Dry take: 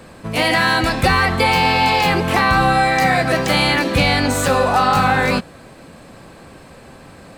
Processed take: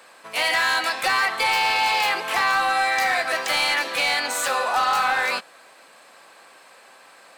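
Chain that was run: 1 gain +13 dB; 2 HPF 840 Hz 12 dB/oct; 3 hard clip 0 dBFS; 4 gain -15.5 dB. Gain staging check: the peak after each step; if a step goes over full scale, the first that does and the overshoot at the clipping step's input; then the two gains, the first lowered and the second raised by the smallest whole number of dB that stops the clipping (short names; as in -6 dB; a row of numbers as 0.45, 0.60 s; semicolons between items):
+9.0, +7.5, 0.0, -15.5 dBFS; step 1, 7.5 dB; step 1 +5 dB, step 4 -7.5 dB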